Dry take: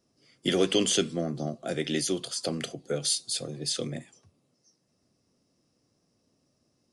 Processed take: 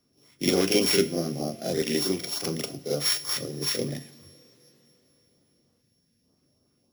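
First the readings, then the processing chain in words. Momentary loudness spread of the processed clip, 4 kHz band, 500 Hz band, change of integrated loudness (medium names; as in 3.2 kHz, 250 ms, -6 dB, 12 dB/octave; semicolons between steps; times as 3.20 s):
9 LU, +2.0 dB, +3.0 dB, +3.0 dB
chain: sorted samples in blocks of 8 samples; harmonic-percussive split harmonic -3 dB; LFO notch saw up 3.3 Hz 430–3100 Hz; time-frequency box 5.81–6.29 s, 260–1500 Hz -11 dB; reverse echo 43 ms -5.5 dB; two-slope reverb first 0.38 s, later 4.2 s, from -20 dB, DRR 10 dB; trim +3 dB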